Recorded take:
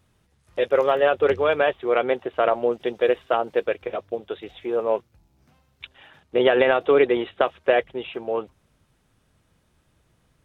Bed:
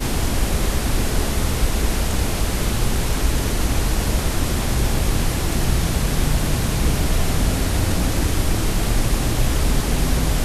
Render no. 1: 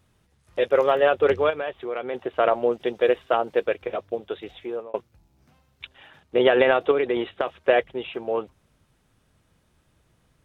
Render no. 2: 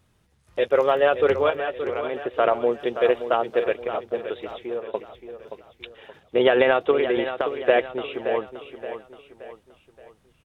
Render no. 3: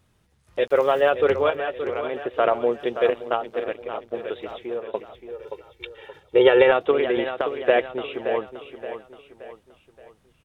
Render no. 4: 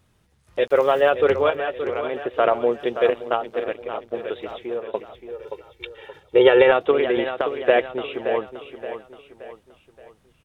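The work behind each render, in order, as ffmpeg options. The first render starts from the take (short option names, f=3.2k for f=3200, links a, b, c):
-filter_complex "[0:a]asplit=3[a][b][c];[a]afade=t=out:st=1.49:d=0.02[d];[b]acompressor=threshold=-32dB:ratio=2:attack=3.2:release=140:knee=1:detection=peak,afade=t=in:st=1.49:d=0.02,afade=t=out:st=2.13:d=0.02[e];[c]afade=t=in:st=2.13:d=0.02[f];[d][e][f]amix=inputs=3:normalize=0,asettb=1/sr,asplit=3[g][h][i];[g]atrim=end=6.914[j];[h]atrim=start=6.91:end=7.58,asetpts=PTS-STARTPTS,afade=t=in:d=0.004:c=qsin,afade=t=out:st=0.666:d=0.004:c=qsin,acompressor=threshold=-18dB:ratio=6:attack=3.2:release=140:knee=1:detection=peak[k];[i]atrim=start=7.576[l];[j][k]acrossfade=d=0.004:c1=hsin:c2=qsin[m];[m][l]acrossfade=d=0.004:c1=qsin:c2=hsin,asplit=2[n][o];[n]atrim=end=4.94,asetpts=PTS-STARTPTS,afade=t=out:st=4.54:d=0.4[p];[o]atrim=start=4.94,asetpts=PTS-STARTPTS,afade=t=in:d=0.004:c=hsin[q];[p][q]concat=n=2:v=0:a=1"
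-af "aecho=1:1:574|1148|1722|2296:0.316|0.133|0.0558|0.0234"
-filter_complex "[0:a]asettb=1/sr,asplit=3[a][b][c];[a]atrim=end=0.674[d];[b]atrim=start=0.67:end=1.1,asetpts=PTS-STARTPTS,afade=t=in:d=0.004:c=qsin,afade=t=out:st=0.426:d=0.004:c=qsin,aeval=exprs='val(0)*gte(abs(val(0)),0.00841)':c=same[e];[c]atrim=start=1.096[f];[d][e]acrossfade=d=0.004:c1=hsin:c2=qsin[g];[g][f]acrossfade=d=0.004:c1=qsin:c2=hsin,asettb=1/sr,asplit=3[h][i][j];[h]atrim=end=3.104[k];[i]atrim=start=3.1:end=4.17,asetpts=PTS-STARTPTS,afade=t=in:d=0.004:c=qsin,afade=t=out:st=1.066:d=0.004:c=qsin,tremolo=f=110:d=0.75[l];[j]atrim=start=4.166[m];[k][l]acrossfade=d=0.004:c1=hsin:c2=qsin[n];[n][m]acrossfade=d=0.004:c1=qsin:c2=hsin,asettb=1/sr,asplit=3[o][p][q];[o]atrim=end=5.314[r];[p]atrim=start=5.31:end=6.72,asetpts=PTS-STARTPTS,afade=t=in:d=0.004:c=qsin,afade=t=out:st=1.406:d=0.004:c=qsin,aecho=1:1:2.2:0.73,atrim=end_sample=62181[s];[q]atrim=start=6.716[t];[r][s]acrossfade=d=0.004:c1=hsin:c2=qsin[u];[u][t]acrossfade=d=0.004:c1=qsin:c2=hsin"
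-af "volume=1.5dB,alimiter=limit=-3dB:level=0:latency=1"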